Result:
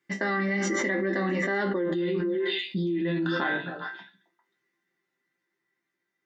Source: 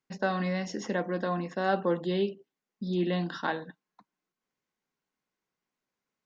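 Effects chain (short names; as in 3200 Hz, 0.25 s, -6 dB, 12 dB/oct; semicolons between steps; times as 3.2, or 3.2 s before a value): Doppler pass-by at 1.87, 21 m/s, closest 2.9 m; HPF 63 Hz; bell 1800 Hz +10.5 dB 0.77 oct; resonator bank C3 sus4, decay 0.22 s; small resonant body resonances 330/2000/3600 Hz, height 17 dB, ringing for 85 ms; on a send: delay with a stepping band-pass 0.133 s, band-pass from 180 Hz, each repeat 1.4 oct, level -8.5 dB; on the sum: fast leveller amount 100%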